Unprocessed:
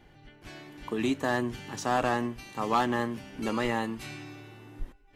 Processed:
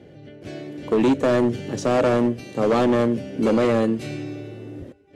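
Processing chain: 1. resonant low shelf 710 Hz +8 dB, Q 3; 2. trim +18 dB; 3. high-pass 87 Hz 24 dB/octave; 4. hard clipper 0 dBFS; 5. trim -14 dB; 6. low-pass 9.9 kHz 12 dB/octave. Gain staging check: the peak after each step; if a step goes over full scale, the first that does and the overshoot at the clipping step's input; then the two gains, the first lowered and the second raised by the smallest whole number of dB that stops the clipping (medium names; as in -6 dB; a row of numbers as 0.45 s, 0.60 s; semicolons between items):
-7.0 dBFS, +11.0 dBFS, +10.0 dBFS, 0.0 dBFS, -14.0 dBFS, -13.5 dBFS; step 2, 10.0 dB; step 2 +8 dB, step 5 -4 dB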